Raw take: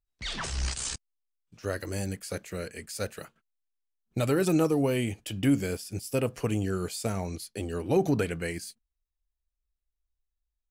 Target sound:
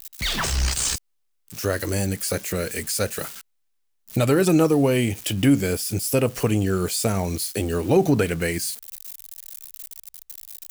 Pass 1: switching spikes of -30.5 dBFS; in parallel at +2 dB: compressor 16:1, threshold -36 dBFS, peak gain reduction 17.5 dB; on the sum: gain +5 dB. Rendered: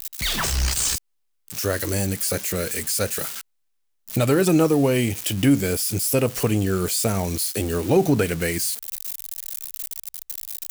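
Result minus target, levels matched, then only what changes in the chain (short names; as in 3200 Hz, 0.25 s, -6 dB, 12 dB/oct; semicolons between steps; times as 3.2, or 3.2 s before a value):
switching spikes: distortion +7 dB
change: switching spikes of -37.5 dBFS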